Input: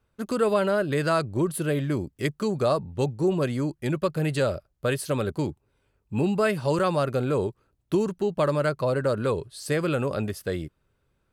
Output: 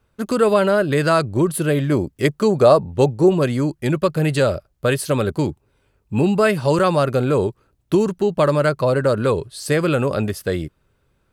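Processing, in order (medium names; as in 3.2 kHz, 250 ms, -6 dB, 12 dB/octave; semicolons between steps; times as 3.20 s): 1.91–3.29 s: dynamic bell 590 Hz, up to +5 dB, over -36 dBFS, Q 0.79; trim +7 dB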